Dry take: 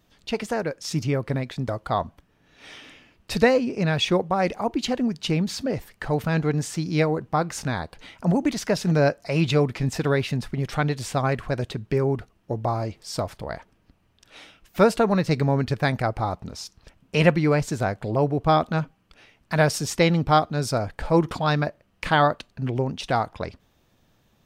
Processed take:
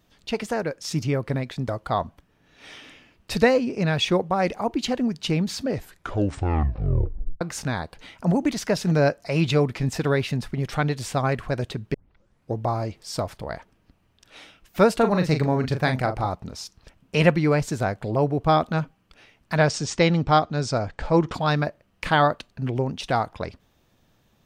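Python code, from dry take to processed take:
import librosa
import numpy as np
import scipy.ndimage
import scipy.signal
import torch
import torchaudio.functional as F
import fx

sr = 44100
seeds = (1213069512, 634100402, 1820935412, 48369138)

y = fx.doubler(x, sr, ms=39.0, db=-7.5, at=(14.99, 16.26), fade=0.02)
y = fx.steep_lowpass(y, sr, hz=7800.0, slope=36, at=(19.56, 21.34))
y = fx.edit(y, sr, fx.tape_stop(start_s=5.69, length_s=1.72),
    fx.tape_start(start_s=11.94, length_s=0.61), tone=tone)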